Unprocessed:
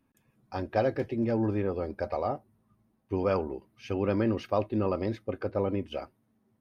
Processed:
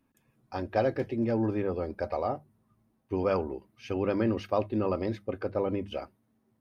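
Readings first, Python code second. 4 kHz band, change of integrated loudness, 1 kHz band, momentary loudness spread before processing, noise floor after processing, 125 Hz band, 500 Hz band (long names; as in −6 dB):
0.0 dB, 0.0 dB, 0.0 dB, 11 LU, −73 dBFS, −1.5 dB, 0.0 dB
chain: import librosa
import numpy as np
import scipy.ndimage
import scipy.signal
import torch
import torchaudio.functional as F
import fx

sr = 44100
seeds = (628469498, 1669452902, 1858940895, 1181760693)

y = fx.hum_notches(x, sr, base_hz=50, count=4)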